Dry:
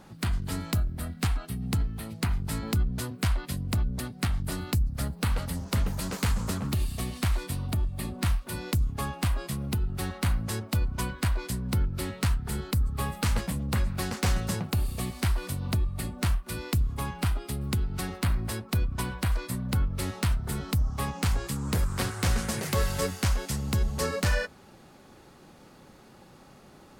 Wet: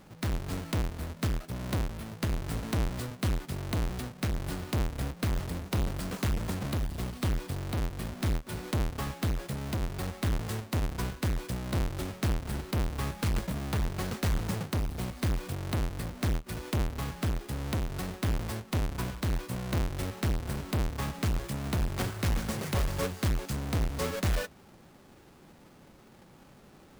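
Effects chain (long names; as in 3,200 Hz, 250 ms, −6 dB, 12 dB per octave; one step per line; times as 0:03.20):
each half-wave held at its own peak
level −7.5 dB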